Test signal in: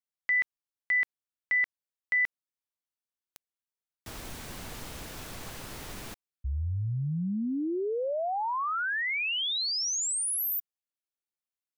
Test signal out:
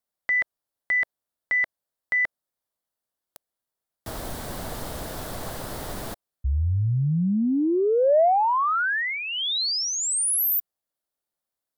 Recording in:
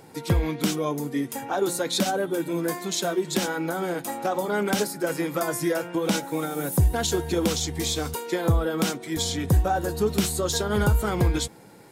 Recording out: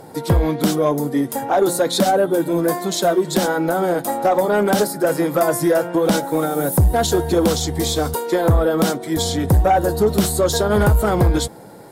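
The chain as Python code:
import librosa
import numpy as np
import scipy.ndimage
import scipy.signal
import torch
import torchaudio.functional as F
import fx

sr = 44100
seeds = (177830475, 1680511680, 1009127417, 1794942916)

y = fx.graphic_eq_15(x, sr, hz=(630, 2500, 6300), db=(6, -9, -5))
y = fx.fold_sine(y, sr, drive_db=4, ceiling_db=-9.0)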